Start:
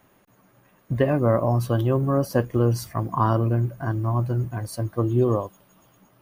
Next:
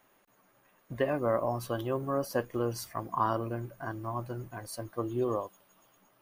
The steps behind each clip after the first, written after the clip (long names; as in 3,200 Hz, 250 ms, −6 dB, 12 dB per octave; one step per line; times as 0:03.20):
parametric band 97 Hz −13 dB 2.9 octaves
level −4.5 dB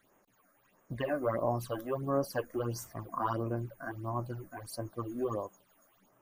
all-pass phaser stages 8, 1.5 Hz, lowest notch 110–4,300 Hz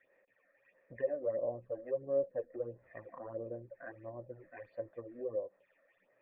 treble cut that deepens with the level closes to 580 Hz, closed at −33 dBFS
formant resonators in series e
tilt shelving filter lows −9.5 dB, about 1,400 Hz
level +13 dB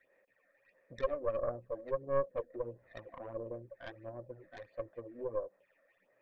stylus tracing distortion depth 0.26 ms